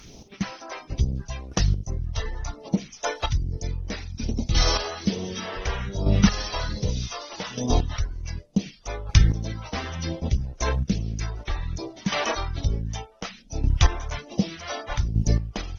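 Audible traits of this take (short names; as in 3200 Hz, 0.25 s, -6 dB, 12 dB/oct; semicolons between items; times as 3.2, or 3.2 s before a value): phasing stages 2, 1.2 Hz, lowest notch 140–1600 Hz; a quantiser's noise floor 12-bit, dither none; chopped level 0.66 Hz, depth 65%, duty 15%; Opus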